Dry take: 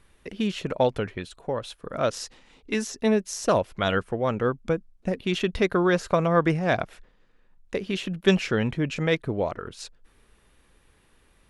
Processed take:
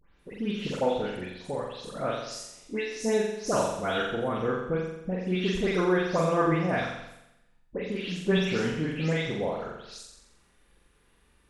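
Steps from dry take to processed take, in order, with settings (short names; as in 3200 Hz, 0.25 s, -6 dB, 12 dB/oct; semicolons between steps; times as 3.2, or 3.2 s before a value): spectral delay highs late, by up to 0.192 s; flutter echo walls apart 7.5 m, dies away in 0.87 s; gain -5.5 dB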